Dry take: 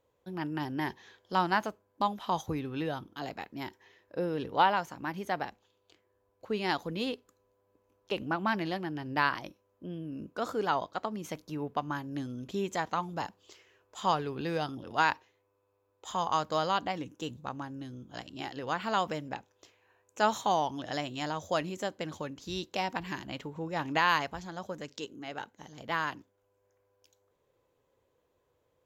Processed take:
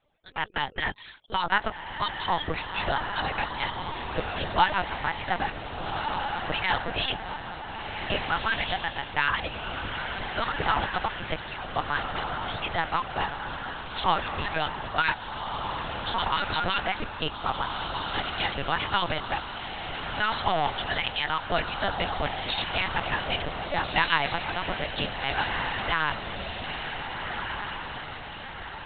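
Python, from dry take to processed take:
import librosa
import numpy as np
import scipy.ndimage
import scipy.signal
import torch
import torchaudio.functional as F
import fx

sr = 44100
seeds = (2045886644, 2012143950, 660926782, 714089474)

p1 = fx.hpss_only(x, sr, part='percussive')
p2 = fx.tilt_eq(p1, sr, slope=2.5)
p3 = fx.over_compress(p2, sr, threshold_db=-37.0, ratio=-0.5)
p4 = p2 + F.gain(torch.from_numpy(p3), -1.5).numpy()
p5 = fx.echo_diffused(p4, sr, ms=1562, feedback_pct=52, wet_db=-4.0)
p6 = fx.lpc_vocoder(p5, sr, seeds[0], excitation='pitch_kept', order=10)
y = F.gain(torch.from_numpy(p6), 4.0).numpy()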